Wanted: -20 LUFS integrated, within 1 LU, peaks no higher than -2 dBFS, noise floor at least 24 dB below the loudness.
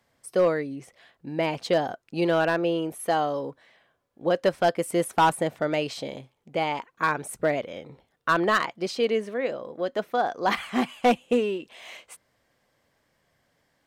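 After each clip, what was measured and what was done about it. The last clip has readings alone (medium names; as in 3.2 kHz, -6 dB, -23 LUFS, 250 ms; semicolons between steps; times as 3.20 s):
clipped samples 0.3%; clipping level -13.5 dBFS; loudness -26.0 LUFS; peak level -13.5 dBFS; loudness target -20.0 LUFS
-> clip repair -13.5 dBFS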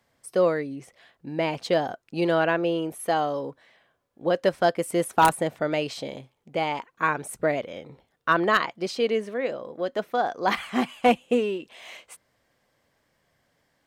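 clipped samples 0.0%; loudness -25.5 LUFS; peak level -4.5 dBFS; loudness target -20.0 LUFS
-> trim +5.5 dB; peak limiter -2 dBFS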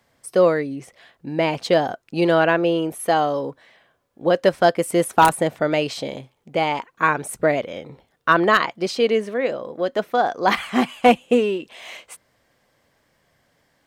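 loudness -20.5 LUFS; peak level -2.0 dBFS; noise floor -66 dBFS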